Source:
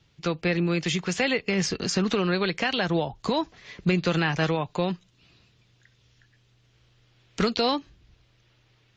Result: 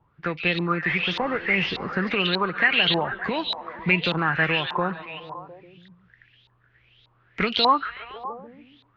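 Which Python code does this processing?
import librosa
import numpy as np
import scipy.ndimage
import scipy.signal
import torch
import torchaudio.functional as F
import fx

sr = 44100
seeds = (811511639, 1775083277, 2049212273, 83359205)

y = fx.delta_mod(x, sr, bps=32000, step_db=-35.0, at=(0.88, 1.93))
y = fx.echo_stepped(y, sr, ms=141, hz=3700.0, octaves=-0.7, feedback_pct=70, wet_db=-2.0)
y = fx.filter_lfo_lowpass(y, sr, shape='saw_up', hz=1.7, low_hz=910.0, high_hz=3900.0, q=7.1)
y = y * 10.0 ** (-2.5 / 20.0)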